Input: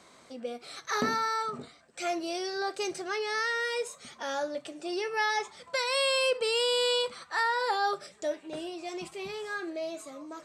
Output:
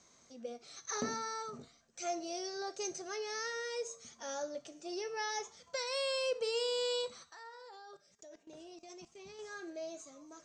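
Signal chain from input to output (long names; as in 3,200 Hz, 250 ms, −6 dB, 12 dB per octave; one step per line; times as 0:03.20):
dynamic equaliser 540 Hz, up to +6 dB, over −42 dBFS, Q 0.87
0:07.25–0:09.39: output level in coarse steps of 20 dB
low-pass with resonance 6,300 Hz, resonance Q 7
low-shelf EQ 160 Hz +11 dB
tuned comb filter 230 Hz, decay 0.59 s, harmonics all, mix 60%
level −6 dB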